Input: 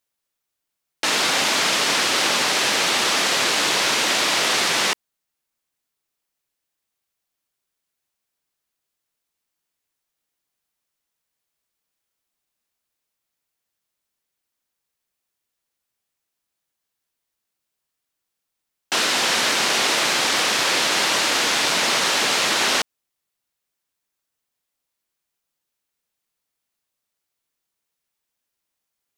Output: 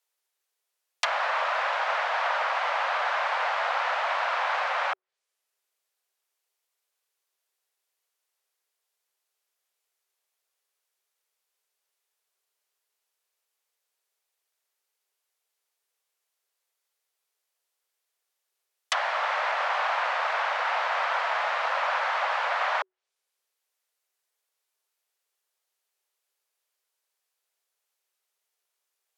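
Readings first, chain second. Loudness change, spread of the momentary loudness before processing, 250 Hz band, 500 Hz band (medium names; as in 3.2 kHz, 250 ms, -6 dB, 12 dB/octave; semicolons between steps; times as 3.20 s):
-8.5 dB, 2 LU, under -40 dB, -5.5 dB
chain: low-pass that closes with the level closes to 1.1 kHz, closed at -21 dBFS; frequency shift +370 Hz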